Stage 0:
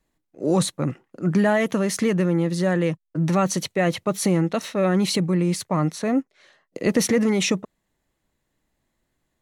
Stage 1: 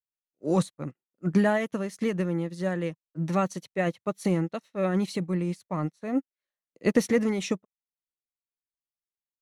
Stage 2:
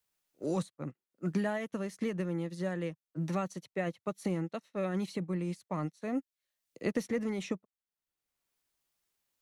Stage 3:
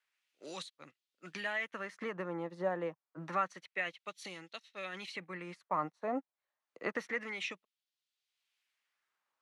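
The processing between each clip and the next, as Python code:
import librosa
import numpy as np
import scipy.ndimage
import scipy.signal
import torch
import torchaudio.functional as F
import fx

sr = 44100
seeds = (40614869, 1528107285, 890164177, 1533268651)

y1 = fx.upward_expand(x, sr, threshold_db=-41.0, expansion=2.5)
y2 = fx.band_squash(y1, sr, depth_pct=70)
y2 = y2 * librosa.db_to_amplitude(-7.5)
y3 = fx.filter_lfo_bandpass(y2, sr, shape='sine', hz=0.28, low_hz=850.0, high_hz=3700.0, q=1.7)
y3 = y3 * librosa.db_to_amplitude(8.5)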